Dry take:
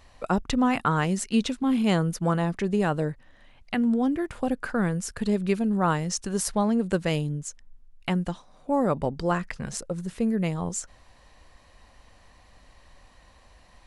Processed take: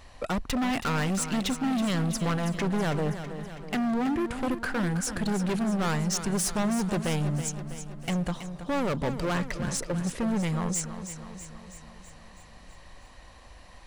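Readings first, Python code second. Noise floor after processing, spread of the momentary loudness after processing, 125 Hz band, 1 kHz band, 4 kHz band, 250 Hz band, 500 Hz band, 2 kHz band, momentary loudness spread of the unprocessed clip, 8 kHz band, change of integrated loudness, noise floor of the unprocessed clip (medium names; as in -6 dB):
-50 dBFS, 11 LU, -0.5 dB, -3.5 dB, +1.0 dB, -2.5 dB, -4.0 dB, 0.0 dB, 10 LU, +2.0 dB, -2.5 dB, -56 dBFS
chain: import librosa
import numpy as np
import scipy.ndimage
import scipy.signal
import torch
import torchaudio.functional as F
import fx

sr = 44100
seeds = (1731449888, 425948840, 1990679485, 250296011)

y = np.clip(10.0 ** (29.5 / 20.0) * x, -1.0, 1.0) / 10.0 ** (29.5 / 20.0)
y = fx.echo_feedback(y, sr, ms=325, feedback_pct=58, wet_db=-10.5)
y = y * 10.0 ** (4.0 / 20.0)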